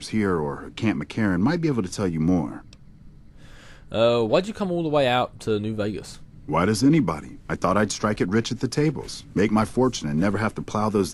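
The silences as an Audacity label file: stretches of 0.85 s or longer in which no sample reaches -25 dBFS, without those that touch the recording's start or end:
2.490000	3.940000	silence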